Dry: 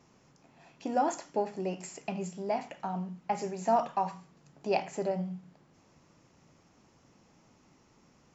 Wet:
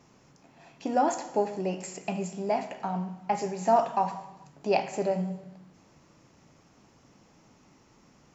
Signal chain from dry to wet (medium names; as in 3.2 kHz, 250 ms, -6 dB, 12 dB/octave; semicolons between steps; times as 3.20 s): gated-style reverb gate 470 ms falling, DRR 11.5 dB; trim +3.5 dB